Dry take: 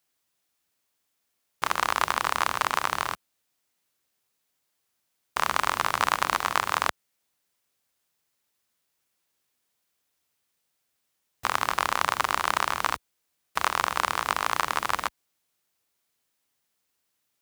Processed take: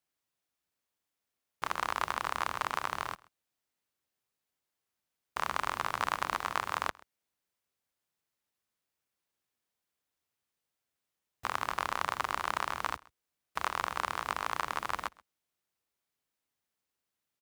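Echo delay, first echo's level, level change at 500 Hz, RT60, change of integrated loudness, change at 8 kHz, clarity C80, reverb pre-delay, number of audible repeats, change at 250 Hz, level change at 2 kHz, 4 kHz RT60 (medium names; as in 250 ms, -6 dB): 131 ms, -24.0 dB, -7.0 dB, no reverb, -8.0 dB, -11.5 dB, no reverb, no reverb, 1, -6.5 dB, -8.0 dB, no reverb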